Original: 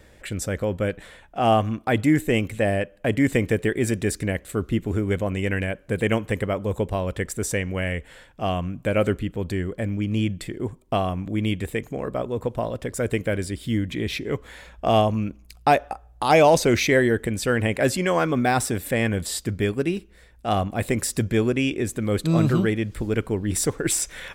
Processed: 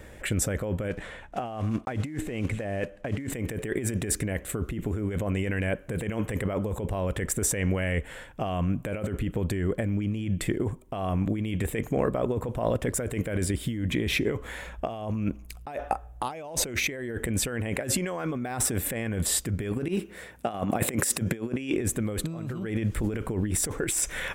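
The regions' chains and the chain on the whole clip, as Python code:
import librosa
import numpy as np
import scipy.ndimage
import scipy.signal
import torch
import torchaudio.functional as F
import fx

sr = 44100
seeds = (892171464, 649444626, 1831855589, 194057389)

y = fx.chain(x, sr, fx.block_float(bits=5),
    fx.air_absorb(metres=65.0), at=(0.9, 3.3))
y = fx.chain(y, sr, fx.highpass(hz=150.0, slope=12),
    fx.over_compress(threshold_db=-30.0, ratio=-0.5), at=(19.88, 21.76))
y = fx.peak_eq(y, sr, hz=4500.0, db=-7.5, octaves=0.79)
y = fx.over_compress(y, sr, threshold_db=-29.0, ratio=-1.0)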